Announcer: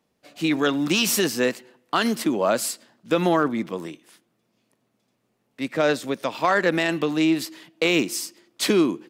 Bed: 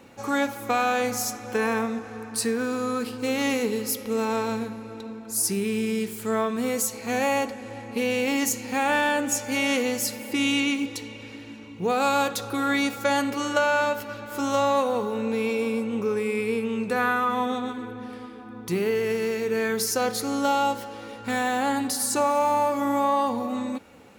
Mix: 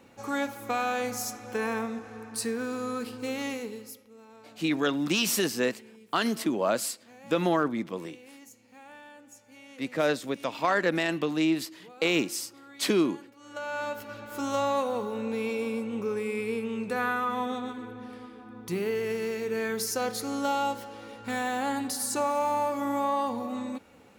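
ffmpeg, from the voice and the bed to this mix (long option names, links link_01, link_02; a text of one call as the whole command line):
ffmpeg -i stem1.wav -i stem2.wav -filter_complex "[0:a]adelay=4200,volume=-5dB[link_01];[1:a]volume=16dB,afade=type=out:start_time=3.16:duration=0.93:silence=0.0891251,afade=type=in:start_time=13.4:duration=0.78:silence=0.0841395[link_02];[link_01][link_02]amix=inputs=2:normalize=0" out.wav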